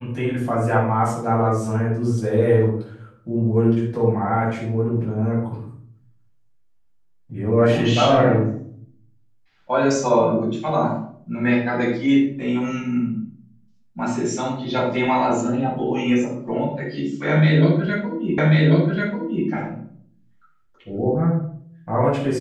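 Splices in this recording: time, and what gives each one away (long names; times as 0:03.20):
0:18.38: the same again, the last 1.09 s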